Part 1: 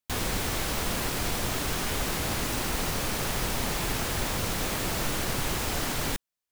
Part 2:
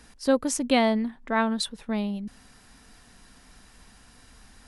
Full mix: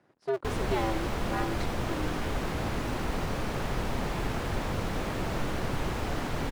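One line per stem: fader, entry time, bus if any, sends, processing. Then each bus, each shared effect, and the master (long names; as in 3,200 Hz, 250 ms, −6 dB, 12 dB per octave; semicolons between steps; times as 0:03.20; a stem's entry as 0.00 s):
+0.5 dB, 0.35 s, no send, no processing
−7.5 dB, 0.00 s, no send, sub-harmonics by changed cycles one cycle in 2, inverted; high-pass filter 220 Hz 12 dB per octave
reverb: not used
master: low-pass filter 1,300 Hz 6 dB per octave; one half of a high-frequency compander decoder only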